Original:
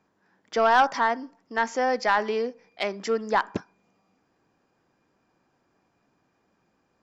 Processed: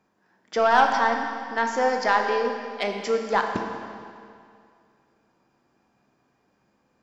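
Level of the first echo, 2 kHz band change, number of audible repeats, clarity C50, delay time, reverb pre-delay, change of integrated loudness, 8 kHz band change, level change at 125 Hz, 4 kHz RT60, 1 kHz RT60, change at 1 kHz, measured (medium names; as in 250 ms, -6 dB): no echo, +2.0 dB, no echo, 4.5 dB, no echo, 14 ms, +1.5 dB, no reading, +1.0 dB, 2.1 s, 2.3 s, +2.0 dB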